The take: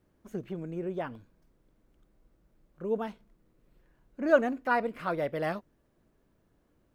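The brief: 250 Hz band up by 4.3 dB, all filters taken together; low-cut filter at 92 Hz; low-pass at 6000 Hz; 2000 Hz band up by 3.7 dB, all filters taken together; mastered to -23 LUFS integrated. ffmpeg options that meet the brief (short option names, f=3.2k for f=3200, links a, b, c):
-af "highpass=92,lowpass=6k,equalizer=f=250:t=o:g=5.5,equalizer=f=2k:t=o:g=5.5,volume=6.5dB"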